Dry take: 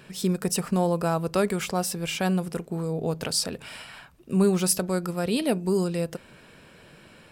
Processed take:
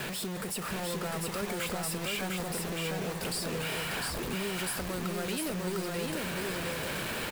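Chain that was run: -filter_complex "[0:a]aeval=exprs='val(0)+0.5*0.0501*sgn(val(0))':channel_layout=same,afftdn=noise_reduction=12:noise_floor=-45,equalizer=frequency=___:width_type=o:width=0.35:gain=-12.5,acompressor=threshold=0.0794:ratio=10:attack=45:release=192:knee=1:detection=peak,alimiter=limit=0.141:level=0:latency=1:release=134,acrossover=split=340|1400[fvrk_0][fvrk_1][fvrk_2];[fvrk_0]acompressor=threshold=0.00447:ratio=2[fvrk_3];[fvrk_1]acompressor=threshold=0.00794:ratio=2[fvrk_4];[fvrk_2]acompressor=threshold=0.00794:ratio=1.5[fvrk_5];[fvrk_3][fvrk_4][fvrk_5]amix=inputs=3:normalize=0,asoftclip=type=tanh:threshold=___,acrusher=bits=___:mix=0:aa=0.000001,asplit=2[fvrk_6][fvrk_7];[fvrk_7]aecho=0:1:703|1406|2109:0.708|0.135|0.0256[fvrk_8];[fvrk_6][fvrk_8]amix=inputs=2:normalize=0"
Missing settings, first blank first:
6100, 0.0398, 6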